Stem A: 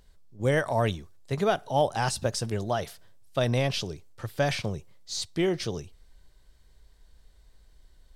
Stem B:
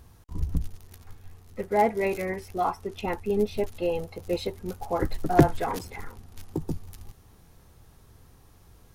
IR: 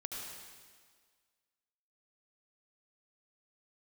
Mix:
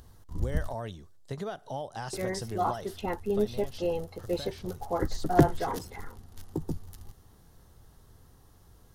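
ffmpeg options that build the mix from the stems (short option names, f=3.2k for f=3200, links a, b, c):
-filter_complex "[0:a]acompressor=threshold=-31dB:ratio=8,volume=-2dB,afade=t=out:st=3.05:d=0.42:silence=0.421697[a];[1:a]volume=-2.5dB,asplit=3[b][c][d];[b]atrim=end=0.74,asetpts=PTS-STARTPTS,afade=t=out:st=0.736:d=0.004:c=hsin[e];[c]atrim=start=0.74:end=2.13,asetpts=PTS-STARTPTS,volume=0[f];[d]atrim=start=2.13,asetpts=PTS-STARTPTS,afade=t=in:d=0.004:c=hsin[g];[e][f][g]concat=n=3:v=0:a=1[h];[a][h]amix=inputs=2:normalize=0,acompressor=mode=upward:threshold=-56dB:ratio=2.5,equalizer=f=2.4k:t=o:w=0.29:g=-9"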